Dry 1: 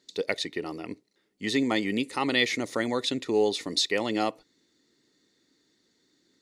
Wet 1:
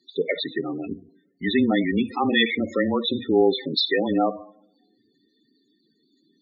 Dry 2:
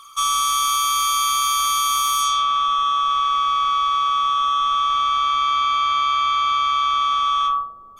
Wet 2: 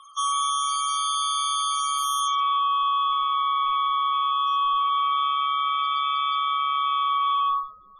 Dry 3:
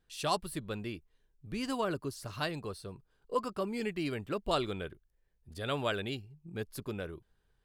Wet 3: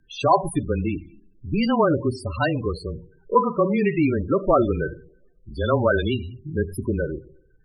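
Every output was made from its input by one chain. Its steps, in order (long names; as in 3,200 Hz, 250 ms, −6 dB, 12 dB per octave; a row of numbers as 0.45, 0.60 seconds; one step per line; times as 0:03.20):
coupled-rooms reverb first 0.61 s, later 1.7 s, from −24 dB, DRR 9 dB
spectral peaks only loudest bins 16
frequency shifter −20 Hz
loudness normalisation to −23 LKFS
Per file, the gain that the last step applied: +5.5, −4.0, +14.5 decibels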